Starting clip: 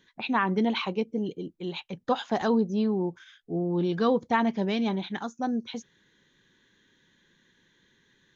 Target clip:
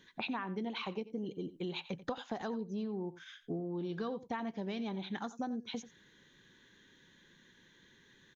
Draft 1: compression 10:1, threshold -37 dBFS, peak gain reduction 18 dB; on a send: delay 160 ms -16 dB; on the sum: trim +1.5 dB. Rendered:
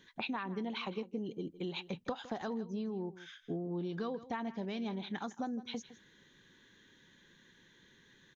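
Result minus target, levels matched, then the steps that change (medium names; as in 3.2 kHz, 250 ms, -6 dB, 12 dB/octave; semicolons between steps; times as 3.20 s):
echo 71 ms late
change: delay 89 ms -16 dB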